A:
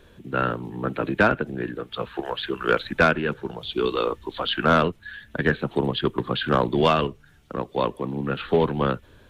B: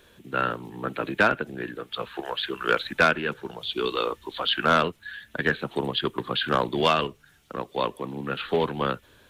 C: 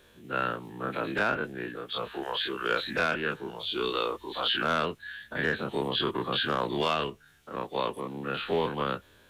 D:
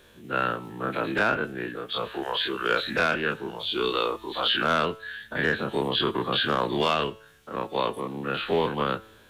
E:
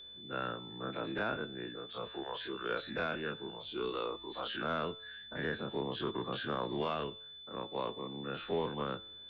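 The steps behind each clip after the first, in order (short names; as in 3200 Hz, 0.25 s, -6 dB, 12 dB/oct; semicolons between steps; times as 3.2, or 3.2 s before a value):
tilt +2 dB/oct; gain -1.5 dB
spectral dilation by 60 ms; limiter -10 dBFS, peak gain reduction 6 dB; gain -6.5 dB
resonator 110 Hz, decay 0.69 s, harmonics all, mix 40%; gain +7.5 dB
tape spacing loss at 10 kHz 31 dB; whine 3500 Hz -40 dBFS; gain -8.5 dB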